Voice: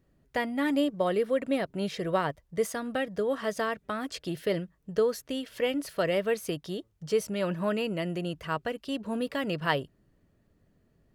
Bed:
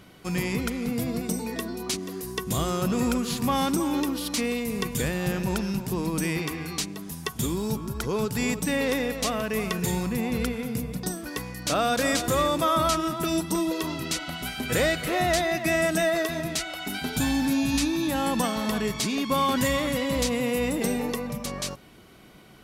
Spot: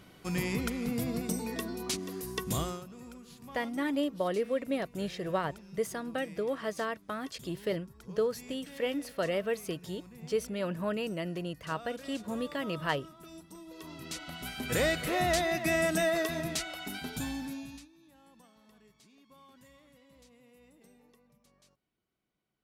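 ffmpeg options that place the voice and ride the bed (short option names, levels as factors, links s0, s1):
-filter_complex "[0:a]adelay=3200,volume=0.631[s0];[1:a]volume=5.31,afade=t=out:st=2.55:d=0.3:silence=0.112202,afade=t=in:st=13.66:d=1.2:silence=0.112202,afade=t=out:st=16.49:d=1.39:silence=0.0316228[s1];[s0][s1]amix=inputs=2:normalize=0"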